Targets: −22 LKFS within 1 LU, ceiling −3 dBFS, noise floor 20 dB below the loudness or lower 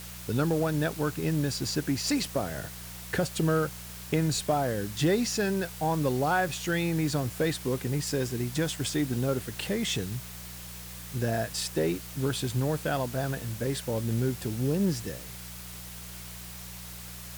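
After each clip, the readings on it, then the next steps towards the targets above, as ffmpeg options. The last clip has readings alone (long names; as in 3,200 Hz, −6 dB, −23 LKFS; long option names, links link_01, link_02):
mains hum 60 Hz; hum harmonics up to 180 Hz; level of the hum −43 dBFS; background noise floor −42 dBFS; target noise floor −50 dBFS; integrated loudness −29.5 LKFS; sample peak −15.0 dBFS; target loudness −22.0 LKFS
→ -af "bandreject=frequency=60:width_type=h:width=4,bandreject=frequency=120:width_type=h:width=4,bandreject=frequency=180:width_type=h:width=4"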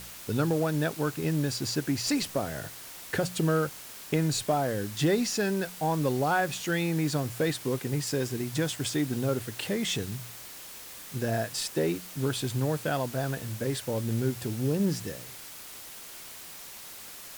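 mains hum none found; background noise floor −45 dBFS; target noise floor −50 dBFS
→ -af "afftdn=noise_reduction=6:noise_floor=-45"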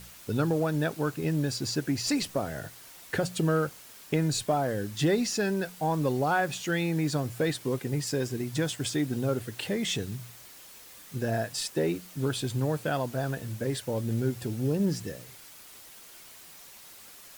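background noise floor −50 dBFS; integrated loudness −29.5 LKFS; sample peak −15.5 dBFS; target loudness −22.0 LKFS
→ -af "volume=7.5dB"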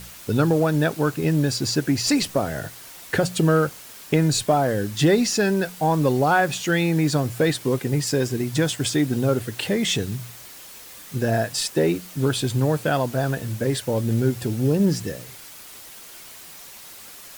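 integrated loudness −22.0 LKFS; sample peak −8.0 dBFS; background noise floor −42 dBFS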